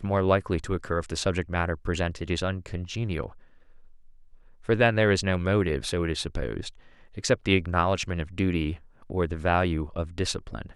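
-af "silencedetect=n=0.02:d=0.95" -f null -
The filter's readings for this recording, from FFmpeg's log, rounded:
silence_start: 3.26
silence_end: 4.69 | silence_duration: 1.43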